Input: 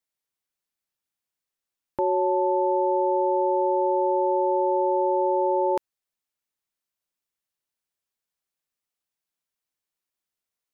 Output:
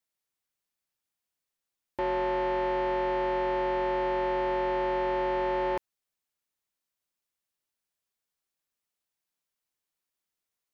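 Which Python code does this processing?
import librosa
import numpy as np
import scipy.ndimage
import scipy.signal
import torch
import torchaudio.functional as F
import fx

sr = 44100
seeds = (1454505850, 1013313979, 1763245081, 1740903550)

y = 10.0 ** (-25.5 / 20.0) * np.tanh(x / 10.0 ** (-25.5 / 20.0))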